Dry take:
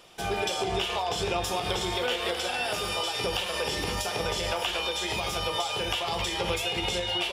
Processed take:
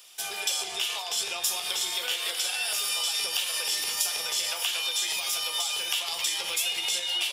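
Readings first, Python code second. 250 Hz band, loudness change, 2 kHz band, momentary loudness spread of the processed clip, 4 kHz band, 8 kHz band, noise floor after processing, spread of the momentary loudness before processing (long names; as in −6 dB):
below −15 dB, +1.5 dB, −1.0 dB, 2 LU, +3.0 dB, +9.0 dB, −36 dBFS, 1 LU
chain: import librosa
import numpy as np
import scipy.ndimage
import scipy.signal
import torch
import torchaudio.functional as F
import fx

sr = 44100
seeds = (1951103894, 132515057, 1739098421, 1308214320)

y = np.diff(x, prepend=0.0)
y = y * librosa.db_to_amplitude(9.0)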